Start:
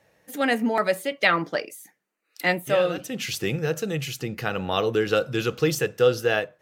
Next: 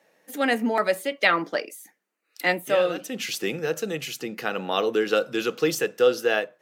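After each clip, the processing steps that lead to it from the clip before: high-pass 200 Hz 24 dB/octave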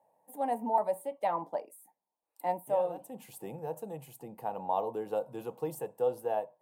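FFT filter 100 Hz 0 dB, 180 Hz -11 dB, 380 Hz -16 dB, 940 Hz +3 dB, 1.3 kHz -26 dB, 6 kHz -30 dB, 8.7 kHz -11 dB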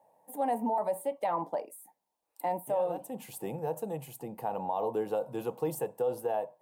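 peak limiter -27 dBFS, peak gain reduction 11.5 dB; trim +5 dB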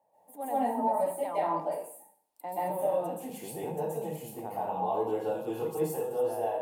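plate-style reverb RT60 0.56 s, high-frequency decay 0.9×, pre-delay 115 ms, DRR -8 dB; trim -7.5 dB

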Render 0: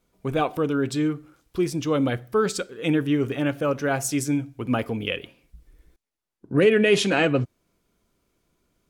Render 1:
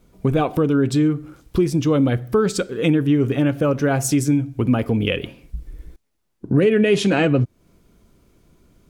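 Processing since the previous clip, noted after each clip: bass shelf 390 Hz +9.5 dB; compression 2.5:1, threshold -27 dBFS, peak gain reduction 12.5 dB; trim +8.5 dB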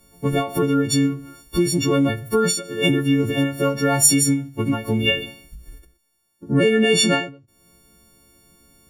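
partials quantised in pitch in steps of 4 st; endings held to a fixed fall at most 130 dB/s; trim -1 dB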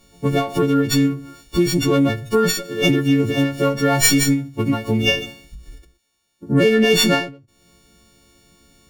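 sliding maximum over 3 samples; trim +2 dB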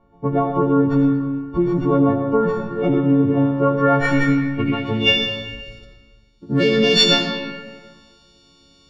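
low-pass sweep 980 Hz -> 4.5 kHz, 3.48–5.40 s; reverberation RT60 1.7 s, pre-delay 40 ms, DRR 3.5 dB; trim -3 dB

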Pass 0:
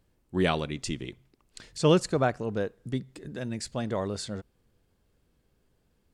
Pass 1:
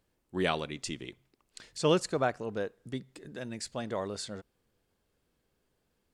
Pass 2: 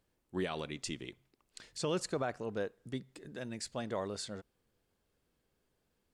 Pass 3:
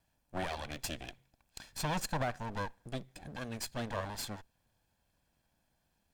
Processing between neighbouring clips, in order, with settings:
bass shelf 220 Hz -9 dB; trim -2 dB
peak limiter -22 dBFS, peak gain reduction 10 dB; trim -2.5 dB
comb filter that takes the minimum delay 1.2 ms; trim +3.5 dB

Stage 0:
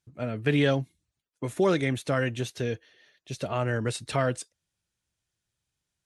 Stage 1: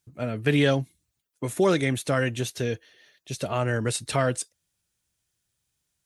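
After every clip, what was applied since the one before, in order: treble shelf 8.2 kHz +11.5 dB; trim +2 dB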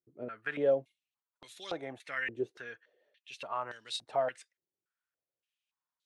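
step-sequenced band-pass 3.5 Hz 390–3800 Hz

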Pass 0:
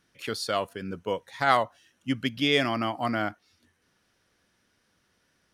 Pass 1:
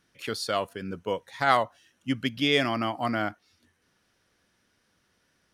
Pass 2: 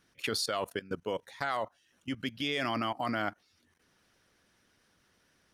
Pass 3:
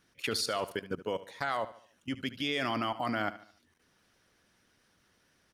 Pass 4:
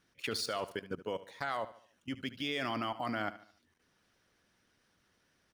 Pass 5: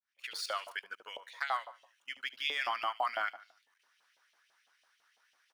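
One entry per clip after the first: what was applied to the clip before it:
no audible change
harmonic-percussive split harmonic -6 dB; level held to a coarse grid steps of 19 dB; trim +6 dB
feedback delay 73 ms, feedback 43%, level -15.5 dB
median filter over 3 samples; trim -3.5 dB
fade-in on the opening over 0.58 s; LFO high-pass saw up 6 Hz 650–3200 Hz

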